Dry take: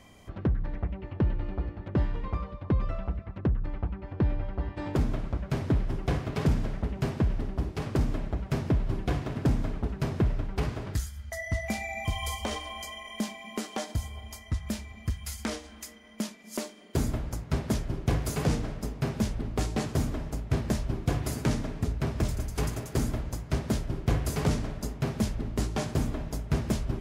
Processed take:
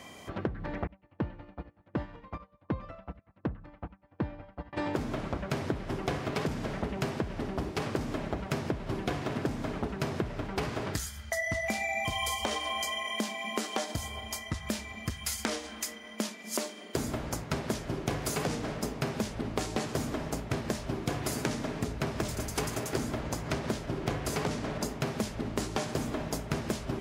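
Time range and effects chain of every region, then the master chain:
0.87–4.73 s: treble shelf 3.2 kHz -6 dB + band-stop 390 Hz, Q 5.1 + upward expansion 2.5:1, over -42 dBFS
22.93–24.85 s: treble shelf 7.2 kHz -6 dB + upward compressor, threshold -28 dBFS
whole clip: high-pass 300 Hz 6 dB/octave; peaking EQ 12 kHz -2 dB 0.45 oct; compression 6:1, threshold -37 dBFS; trim +8.5 dB

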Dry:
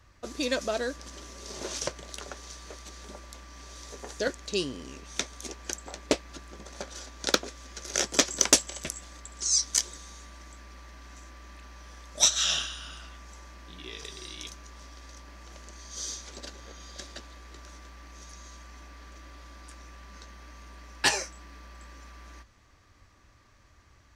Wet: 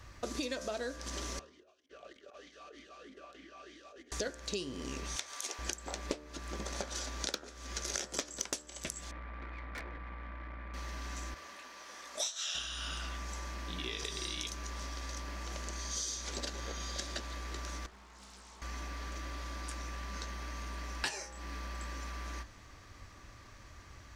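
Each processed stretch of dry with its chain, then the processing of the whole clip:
1.39–4.12 s: compressor with a negative ratio -46 dBFS, ratio -0.5 + talking filter a-i 3.2 Hz
5.16–5.59 s: high-pass 670 Hz + compression 2:1, threshold -40 dBFS
9.11–10.74 s: brick-wall FIR low-pass 2.5 kHz + valve stage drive 45 dB, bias 0.4 + band-stop 390 Hz, Q 7.7
11.34–12.55 s: high-pass 380 Hz + detune thickener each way 43 cents
17.86–18.62 s: feedback comb 200 Hz, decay 0.43 s, mix 90% + loudspeaker Doppler distortion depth 0.76 ms
whole clip: de-hum 74.64 Hz, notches 25; compression 10:1, threshold -41 dBFS; trim +6.5 dB

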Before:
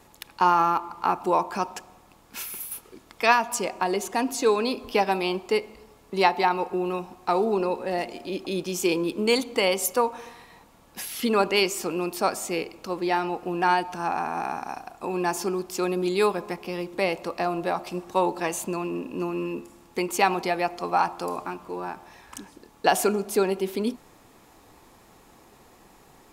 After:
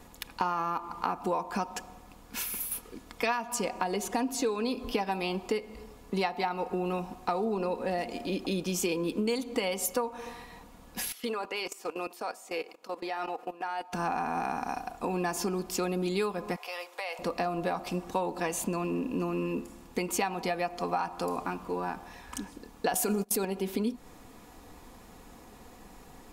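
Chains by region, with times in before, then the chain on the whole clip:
11.12–13.93 s: high-pass 500 Hz + treble shelf 2.2 kHz -3.5 dB + level held to a coarse grid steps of 17 dB
16.56–17.19 s: high-pass 650 Hz 24 dB/octave + compression 4:1, threshold -33 dBFS
22.93–23.45 s: treble shelf 7.3 kHz +11.5 dB + gate -28 dBFS, range -56 dB + level flattener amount 100%
whole clip: bass shelf 180 Hz +7.5 dB; comb 4.1 ms, depth 37%; compression 6:1, threshold -27 dBFS

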